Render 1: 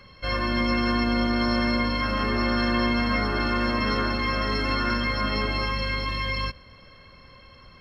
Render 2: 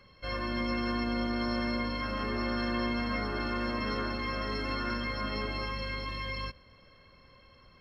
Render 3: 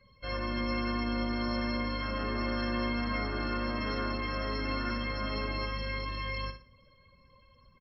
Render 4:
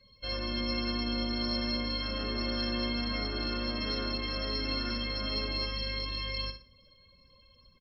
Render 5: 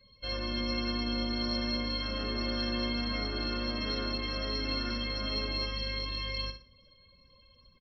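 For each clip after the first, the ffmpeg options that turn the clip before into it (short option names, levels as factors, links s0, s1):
-af "equalizer=f=430:t=o:w=1.6:g=2.5,volume=0.355"
-af "afftdn=nr=16:nf=-54,aecho=1:1:60|120|180:0.355|0.106|0.0319,volume=0.891"
-af "equalizer=f=125:t=o:w=1:g=-4,equalizer=f=1000:t=o:w=1:g=-6,equalizer=f=2000:t=o:w=1:g=-5,equalizer=f=4000:t=o:w=1:g=11"
-af "aresample=11025,aresample=44100"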